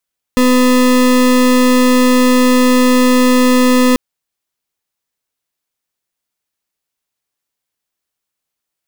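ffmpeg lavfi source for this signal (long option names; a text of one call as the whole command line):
ffmpeg -f lavfi -i "aevalsrc='0.335*(2*lt(mod(252*t,1),0.33)-1)':duration=3.59:sample_rate=44100" out.wav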